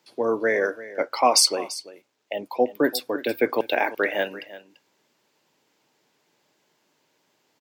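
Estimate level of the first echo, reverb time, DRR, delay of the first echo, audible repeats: -16.5 dB, none, none, 0.34 s, 1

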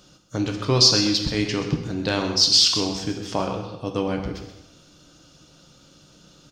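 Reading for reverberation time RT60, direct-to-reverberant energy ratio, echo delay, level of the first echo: 0.95 s, 3.0 dB, 0.129 s, -11.0 dB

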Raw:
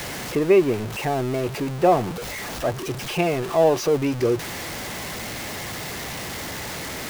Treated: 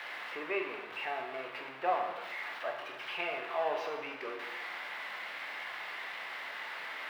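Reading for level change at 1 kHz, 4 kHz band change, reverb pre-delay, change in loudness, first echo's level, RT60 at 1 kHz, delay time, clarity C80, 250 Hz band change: -9.5 dB, -11.0 dB, 12 ms, -14.0 dB, none, 0.95 s, none, 7.5 dB, -24.5 dB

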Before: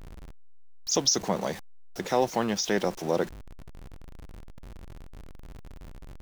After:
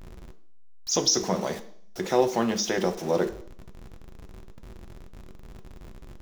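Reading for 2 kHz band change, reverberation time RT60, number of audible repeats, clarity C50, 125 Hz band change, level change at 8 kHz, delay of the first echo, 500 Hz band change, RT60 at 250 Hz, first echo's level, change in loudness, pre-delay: +0.5 dB, 0.60 s, none, 14.5 dB, +1.0 dB, +1.5 dB, none, +2.5 dB, 0.65 s, none, +1.5 dB, 3 ms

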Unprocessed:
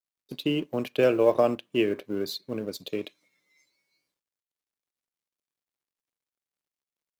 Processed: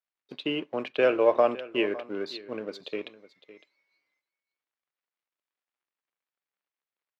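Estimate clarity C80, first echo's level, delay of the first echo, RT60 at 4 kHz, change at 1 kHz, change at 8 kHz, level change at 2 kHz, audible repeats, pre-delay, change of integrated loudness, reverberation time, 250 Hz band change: none, -17.5 dB, 0.558 s, none, +2.5 dB, under -10 dB, +2.5 dB, 1, none, -1.0 dB, none, -4.5 dB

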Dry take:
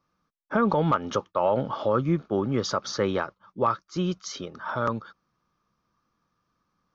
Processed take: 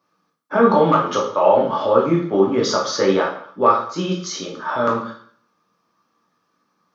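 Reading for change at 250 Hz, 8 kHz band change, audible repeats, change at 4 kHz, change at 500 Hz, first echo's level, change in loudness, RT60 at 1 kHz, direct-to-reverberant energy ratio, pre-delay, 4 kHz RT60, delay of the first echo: +7.0 dB, n/a, none, +8.5 dB, +10.0 dB, none, +8.5 dB, 0.55 s, -3.0 dB, 5 ms, 0.50 s, none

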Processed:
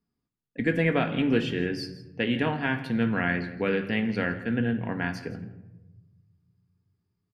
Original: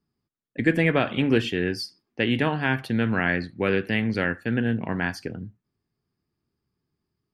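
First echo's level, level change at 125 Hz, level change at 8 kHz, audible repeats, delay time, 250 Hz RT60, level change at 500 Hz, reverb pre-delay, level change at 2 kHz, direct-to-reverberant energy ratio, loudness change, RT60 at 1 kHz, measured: -17.5 dB, -3.0 dB, n/a, 1, 0.164 s, 1.8 s, -2.5 dB, 4 ms, -3.5 dB, 6.0 dB, -3.0 dB, 0.90 s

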